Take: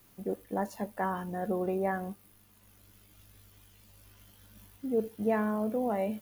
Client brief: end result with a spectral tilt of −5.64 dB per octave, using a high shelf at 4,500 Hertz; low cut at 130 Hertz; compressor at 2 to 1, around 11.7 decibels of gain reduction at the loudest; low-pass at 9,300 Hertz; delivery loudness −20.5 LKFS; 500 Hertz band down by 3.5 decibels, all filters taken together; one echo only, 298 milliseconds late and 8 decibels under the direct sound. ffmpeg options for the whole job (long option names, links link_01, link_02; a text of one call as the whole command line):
ffmpeg -i in.wav -af "highpass=130,lowpass=9300,equalizer=frequency=500:width_type=o:gain=-4.5,highshelf=frequency=4500:gain=7,acompressor=threshold=-49dB:ratio=2,aecho=1:1:298:0.398,volume=24.5dB" out.wav